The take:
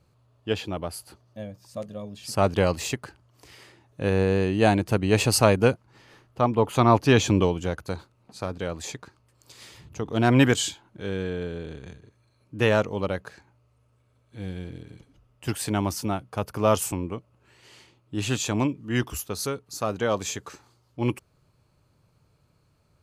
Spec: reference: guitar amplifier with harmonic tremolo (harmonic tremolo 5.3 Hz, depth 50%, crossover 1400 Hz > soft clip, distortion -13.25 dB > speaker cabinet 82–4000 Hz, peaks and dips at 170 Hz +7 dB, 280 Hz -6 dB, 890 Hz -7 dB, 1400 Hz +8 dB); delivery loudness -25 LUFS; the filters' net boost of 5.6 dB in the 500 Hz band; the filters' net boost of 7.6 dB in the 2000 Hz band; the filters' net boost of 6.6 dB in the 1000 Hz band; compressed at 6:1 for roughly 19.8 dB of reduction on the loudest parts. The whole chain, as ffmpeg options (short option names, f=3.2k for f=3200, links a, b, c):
-filter_complex "[0:a]equalizer=f=500:t=o:g=5.5,equalizer=f=1k:t=o:g=6.5,equalizer=f=2k:t=o:g=3.5,acompressor=threshold=-29dB:ratio=6,acrossover=split=1400[a][b];[a]aeval=exprs='val(0)*(1-0.5/2+0.5/2*cos(2*PI*5.3*n/s))':c=same[c];[b]aeval=exprs='val(0)*(1-0.5/2-0.5/2*cos(2*PI*5.3*n/s))':c=same[d];[c][d]amix=inputs=2:normalize=0,asoftclip=threshold=-26.5dB,highpass=82,equalizer=f=170:t=q:w=4:g=7,equalizer=f=280:t=q:w=4:g=-6,equalizer=f=890:t=q:w=4:g=-7,equalizer=f=1.4k:t=q:w=4:g=8,lowpass=f=4k:w=0.5412,lowpass=f=4k:w=1.3066,volume=14.5dB"